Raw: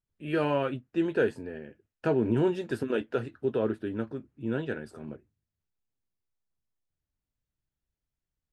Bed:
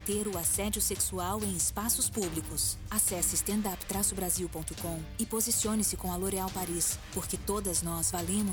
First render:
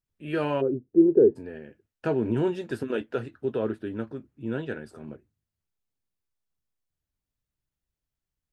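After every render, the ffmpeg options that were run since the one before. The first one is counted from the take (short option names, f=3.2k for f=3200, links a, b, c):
-filter_complex "[0:a]asplit=3[a][b][c];[a]afade=t=out:st=0.6:d=0.02[d];[b]lowpass=f=390:t=q:w=4.4,afade=t=in:st=0.6:d=0.02,afade=t=out:st=1.35:d=0.02[e];[c]afade=t=in:st=1.35:d=0.02[f];[d][e][f]amix=inputs=3:normalize=0"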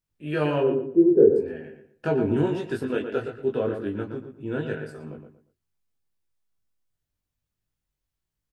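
-filter_complex "[0:a]asplit=2[a][b];[b]adelay=20,volume=-2dB[c];[a][c]amix=inputs=2:normalize=0,asplit=2[d][e];[e]adelay=117,lowpass=f=3k:p=1,volume=-7.5dB,asplit=2[f][g];[g]adelay=117,lowpass=f=3k:p=1,volume=0.28,asplit=2[h][i];[i]adelay=117,lowpass=f=3k:p=1,volume=0.28[j];[f][h][j]amix=inputs=3:normalize=0[k];[d][k]amix=inputs=2:normalize=0"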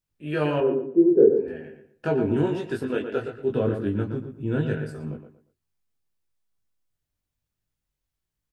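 -filter_complex "[0:a]asettb=1/sr,asplit=3[a][b][c];[a]atrim=end=0.604[d];[b]atrim=start=0.6:end=1.48,asetpts=PTS-STARTPTS,afade=t=in:d=0.004:c=qsin,afade=t=out:st=0.876:d=0.004:c=qsin,highpass=150,lowpass=2.6k[e];[c]atrim=start=1.476[f];[d][e]acrossfade=d=0.004:c1=hsin:c2=qsin[g];[g][f]acrossfade=d=0.004:c1=qsin:c2=hsin,asettb=1/sr,asplit=3[h][i][j];[h]atrim=end=3.504[k];[i]atrim=start=3.5:end=5.17,asetpts=PTS-STARTPTS,afade=t=in:d=0.004:c=qsin,afade=t=out:st=1.666:d=0.004:c=qsin,bass=f=250:g=9,treble=f=4k:g=3[l];[j]atrim=start=5.166[m];[k][l]acrossfade=d=0.004:c1=hsin:c2=qsin[n];[n][m]acrossfade=d=0.004:c1=qsin:c2=hsin"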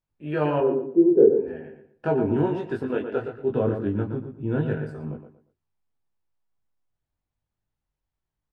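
-af "lowpass=f=1.8k:p=1,equalizer=f=860:t=o:w=0.73:g=5.5"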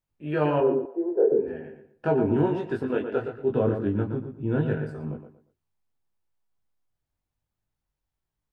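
-filter_complex "[0:a]asettb=1/sr,asplit=3[a][b][c];[a]atrim=end=0.854[d];[b]atrim=start=0.85:end=1.32,asetpts=PTS-STARTPTS,afade=t=in:d=0.004:c=qsin,afade=t=out:st=0.466:d=0.004:c=qsin,highpass=f=720:t=q:w=2.1[e];[c]atrim=start=1.316[f];[d][e]acrossfade=d=0.004:c1=hsin:c2=qsin[g];[g][f]acrossfade=d=0.004:c1=qsin:c2=hsin"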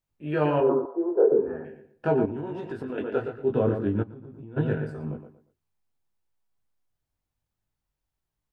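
-filter_complex "[0:a]asettb=1/sr,asplit=3[a][b][c];[a]atrim=end=0.694[d];[b]atrim=start=0.69:end=1.65,asetpts=PTS-STARTPTS,afade=t=in:d=0.004:c=qsin,afade=t=out:st=0.956:d=0.004:c=qsin,lowpass=f=1.2k:t=q:w=4.6[e];[c]atrim=start=1.646[f];[d][e]acrossfade=d=0.004:c1=hsin:c2=qsin[g];[g][f]acrossfade=d=0.004:c1=qsin:c2=hsin,asettb=1/sr,asplit=3[h][i][j];[h]atrim=end=2.254[k];[i]atrim=start=2.25:end=2.98,asetpts=PTS-STARTPTS,afade=t=in:d=0.004:c=qsin,afade=t=out:st=0.726:d=0.004:c=qsin,acompressor=threshold=-29dB:ratio=8:attack=3.2:release=140:knee=1:detection=peak[l];[j]atrim=start=2.976[m];[k][l]acrossfade=d=0.004:c1=hsin:c2=qsin[n];[n][m]acrossfade=d=0.004:c1=qsin:c2=hsin,asplit=3[o][p][q];[o]afade=t=out:st=4.02:d=0.02[r];[p]acompressor=threshold=-38dB:ratio=20:attack=3.2:release=140:knee=1:detection=peak,afade=t=in:st=4.02:d=0.02,afade=t=out:st=4.56:d=0.02[s];[q]afade=t=in:st=4.56:d=0.02[t];[r][s][t]amix=inputs=3:normalize=0"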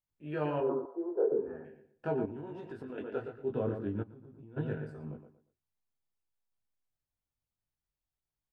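-af "volume=-9.5dB"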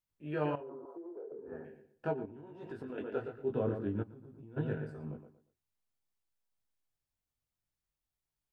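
-filter_complex "[0:a]asettb=1/sr,asplit=3[a][b][c];[a]atrim=end=0.554[d];[b]atrim=start=0.55:end=1.52,asetpts=PTS-STARTPTS,afade=t=in:d=0.004:c=qsin,afade=t=out:st=0.966:d=0.004:c=qsin,acompressor=threshold=-43dB:ratio=8:attack=3.2:release=140:knee=1:detection=peak[e];[c]atrim=start=1.516[f];[d][e]acrossfade=d=0.004:c1=hsin:c2=qsin[g];[g][f]acrossfade=d=0.004:c1=qsin:c2=hsin,asplit=3[h][i][j];[h]afade=t=out:st=2.11:d=0.02[k];[i]agate=range=-8dB:threshold=-30dB:ratio=16:release=100:detection=peak,afade=t=in:st=2.11:d=0.02,afade=t=out:st=2.6:d=0.02[l];[j]afade=t=in:st=2.6:d=0.02[m];[k][l][m]amix=inputs=3:normalize=0"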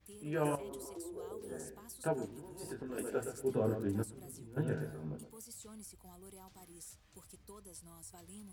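-filter_complex "[1:a]volume=-22dB[a];[0:a][a]amix=inputs=2:normalize=0"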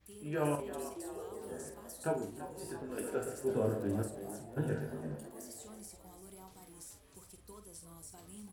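-filter_complex "[0:a]asplit=2[a][b];[b]adelay=48,volume=-8dB[c];[a][c]amix=inputs=2:normalize=0,asplit=2[d][e];[e]asplit=5[f][g][h][i][j];[f]adelay=336,afreqshift=100,volume=-12.5dB[k];[g]adelay=672,afreqshift=200,volume=-19.1dB[l];[h]adelay=1008,afreqshift=300,volume=-25.6dB[m];[i]adelay=1344,afreqshift=400,volume=-32.2dB[n];[j]adelay=1680,afreqshift=500,volume=-38.7dB[o];[k][l][m][n][o]amix=inputs=5:normalize=0[p];[d][p]amix=inputs=2:normalize=0"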